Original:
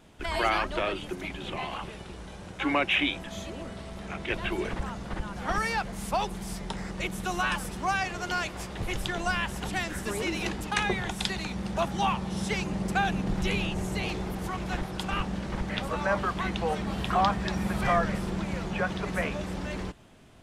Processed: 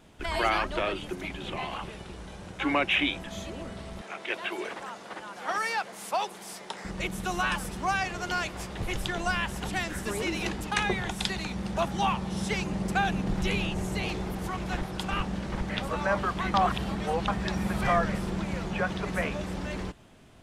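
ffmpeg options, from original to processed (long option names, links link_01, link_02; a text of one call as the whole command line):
ffmpeg -i in.wav -filter_complex "[0:a]asettb=1/sr,asplit=3[link_01][link_02][link_03];[link_01]atrim=end=4.014[link_04];[link_02]atrim=start=4.01:end=6.85,asetpts=PTS-STARTPTS,afade=type=in:duration=0.004:curve=qsin,afade=type=out:start_time=2.836:duration=0.004:curve=qsin,highpass=420[link_05];[link_03]atrim=start=6.846[link_06];[link_04][link_05]acrossfade=duration=0.004:curve1=hsin:curve2=qsin[link_07];[link_07][link_06]acrossfade=duration=0.004:curve1=qsin:curve2=hsin,asplit=3[link_08][link_09][link_10];[link_08]atrim=end=16.542[link_11];[link_09]atrim=start=16.538:end=17.282,asetpts=PTS-STARTPTS,areverse[link_12];[link_10]atrim=start=17.278[link_13];[link_11][link_12]acrossfade=duration=0.004:curve1=hsin:curve2=hsin[link_14];[link_14][link_13]acrossfade=duration=0.004:curve1=hsin:curve2=hsin" out.wav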